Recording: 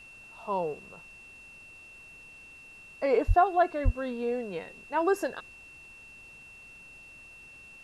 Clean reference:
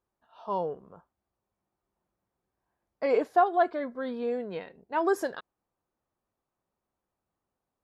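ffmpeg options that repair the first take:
-filter_complex "[0:a]bandreject=f=2700:w=30,asplit=3[s0][s1][s2];[s0]afade=t=out:st=3.27:d=0.02[s3];[s1]highpass=f=140:w=0.5412,highpass=f=140:w=1.3066,afade=t=in:st=3.27:d=0.02,afade=t=out:st=3.39:d=0.02[s4];[s2]afade=t=in:st=3.39:d=0.02[s5];[s3][s4][s5]amix=inputs=3:normalize=0,asplit=3[s6][s7][s8];[s6]afade=t=out:st=3.84:d=0.02[s9];[s7]highpass=f=140:w=0.5412,highpass=f=140:w=1.3066,afade=t=in:st=3.84:d=0.02,afade=t=out:st=3.96:d=0.02[s10];[s8]afade=t=in:st=3.96:d=0.02[s11];[s9][s10][s11]amix=inputs=3:normalize=0,agate=range=0.0891:threshold=0.00708"

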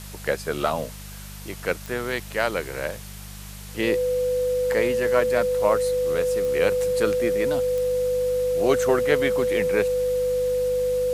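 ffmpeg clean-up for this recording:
-af "adeclick=t=4,bandreject=f=50.1:t=h:w=4,bandreject=f=100.2:t=h:w=4,bandreject=f=150.3:t=h:w=4,bandreject=f=200.4:t=h:w=4,bandreject=f=500:w=30,afftdn=nr=30:nf=-38"

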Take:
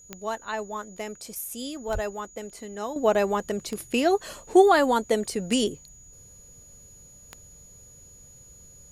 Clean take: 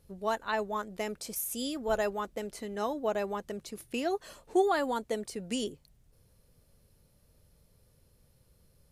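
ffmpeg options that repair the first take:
-filter_complex "[0:a]adeclick=t=4,bandreject=f=6800:w=30,asplit=3[s0][s1][s2];[s0]afade=t=out:st=1.93:d=0.02[s3];[s1]highpass=f=140:w=0.5412,highpass=f=140:w=1.3066,afade=t=in:st=1.93:d=0.02,afade=t=out:st=2.05:d=0.02[s4];[s2]afade=t=in:st=2.05:d=0.02[s5];[s3][s4][s5]amix=inputs=3:normalize=0,asetnsamples=n=441:p=0,asendcmd='2.96 volume volume -9.5dB',volume=1"

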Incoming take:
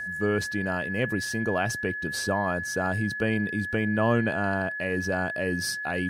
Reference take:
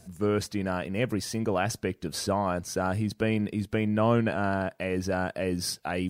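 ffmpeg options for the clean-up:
-af "bandreject=f=1700:w=30"

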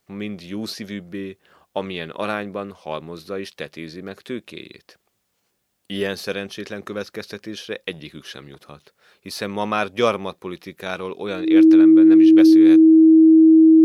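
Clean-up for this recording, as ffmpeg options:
-af "bandreject=f=320:w=30"

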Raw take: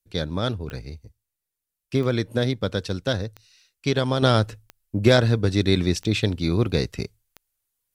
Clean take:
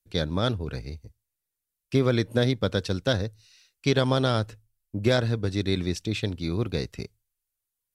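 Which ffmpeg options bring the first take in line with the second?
-af "adeclick=t=4,asetnsamples=n=441:p=0,asendcmd='4.22 volume volume -6dB',volume=1"

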